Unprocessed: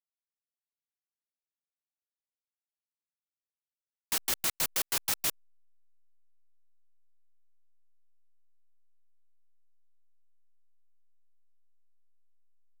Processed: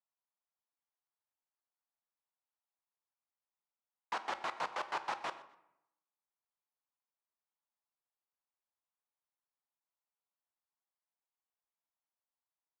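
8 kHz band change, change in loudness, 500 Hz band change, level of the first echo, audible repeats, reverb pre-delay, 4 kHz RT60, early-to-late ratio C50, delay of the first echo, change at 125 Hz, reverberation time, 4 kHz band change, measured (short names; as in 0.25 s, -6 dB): -26.0 dB, -10.0 dB, 0.0 dB, -19.5 dB, 2, 3 ms, 0.55 s, 12.5 dB, 0.124 s, -14.5 dB, 0.80 s, -13.0 dB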